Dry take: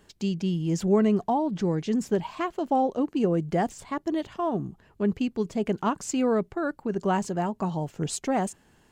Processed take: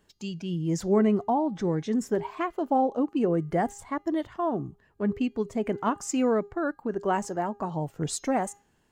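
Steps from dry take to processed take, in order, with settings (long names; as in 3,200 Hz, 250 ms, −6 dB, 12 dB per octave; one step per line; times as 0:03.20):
hum removal 405.7 Hz, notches 17
noise reduction from a noise print of the clip's start 8 dB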